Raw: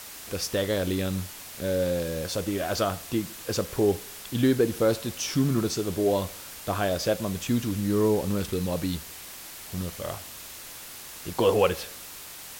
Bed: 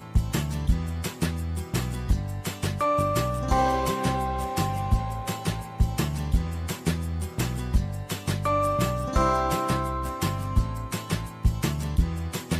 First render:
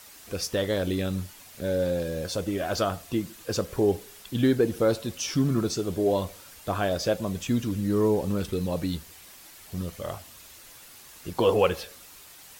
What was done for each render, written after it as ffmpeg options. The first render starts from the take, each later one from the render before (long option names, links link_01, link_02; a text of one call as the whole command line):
ffmpeg -i in.wav -af "afftdn=noise_reduction=8:noise_floor=-42" out.wav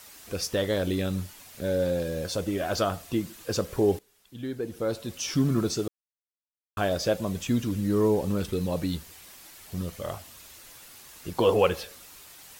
ffmpeg -i in.wav -filter_complex "[0:a]asplit=4[link_01][link_02][link_03][link_04];[link_01]atrim=end=3.99,asetpts=PTS-STARTPTS,afade=type=out:start_time=3.986:duration=0.004:curve=hsin:silence=0.125893[link_05];[link_02]atrim=start=3.99:end=5.88,asetpts=PTS-STARTPTS,afade=type=in:duration=1.33:curve=qua:silence=0.125893,afade=type=out:start_time=1.886:duration=0.004:curve=hsin[link_06];[link_03]atrim=start=5.88:end=6.77,asetpts=PTS-STARTPTS,volume=0[link_07];[link_04]atrim=start=6.77,asetpts=PTS-STARTPTS,afade=type=in:duration=0.004:curve=hsin[link_08];[link_05][link_06][link_07][link_08]concat=n=4:v=0:a=1" out.wav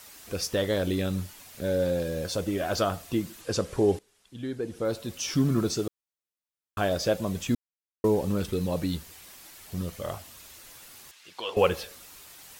ffmpeg -i in.wav -filter_complex "[0:a]asettb=1/sr,asplit=3[link_01][link_02][link_03];[link_01]atrim=end=3.414[link_04];[link_02]atrim=start=3.41:end=4.85,asetpts=PTS-STARTPTS,afade=type=in:duration=0.004:curve=qsin,afade=type=out:start_time=1.436:duration=0.004:curve=qsin,lowpass=frequency=11000:width=0.5412,lowpass=frequency=11000:width=1.3066[link_05];[link_03]atrim=start=4.846[link_06];[link_04][link_05]acrossfade=duration=0.004:curve1=hsin:curve2=qsin[link_07];[link_07][link_06]acrossfade=duration=0.004:curve1=qsin:curve2=hsin,asettb=1/sr,asplit=3[link_08][link_09][link_10];[link_08]atrim=end=11.114[link_11];[link_09]atrim=start=11.11:end=11.57,asetpts=PTS-STARTPTS,afade=type=in:duration=0.004:curve=qsin,afade=type=out:start_time=0.456:duration=0.004:curve=qsin,bandpass=frequency=3000:width_type=q:width=1[link_12];[link_10]atrim=start=11.566[link_13];[link_11][link_12]acrossfade=duration=0.004:curve1=hsin:curve2=qsin[link_14];[link_14][link_13]acrossfade=duration=0.004:curve1=qsin:curve2=hsin,asplit=3[link_15][link_16][link_17];[link_15]atrim=end=7.55,asetpts=PTS-STARTPTS,afade=type=out:start_time=7.546:duration=0.004:curve=hsin[link_18];[link_16]atrim=start=7.55:end=8.04,asetpts=PTS-STARTPTS,volume=0[link_19];[link_17]atrim=start=8.04,asetpts=PTS-STARTPTS,afade=type=in:duration=0.004:curve=hsin[link_20];[link_18][link_19][link_20]concat=n=3:v=0:a=1" out.wav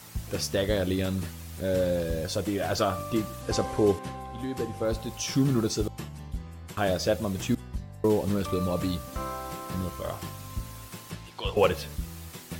ffmpeg -i in.wav -i bed.wav -filter_complex "[1:a]volume=-12dB[link_01];[0:a][link_01]amix=inputs=2:normalize=0" out.wav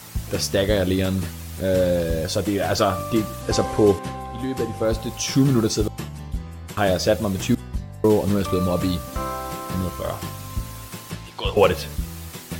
ffmpeg -i in.wav -af "volume=6.5dB,alimiter=limit=-3dB:level=0:latency=1" out.wav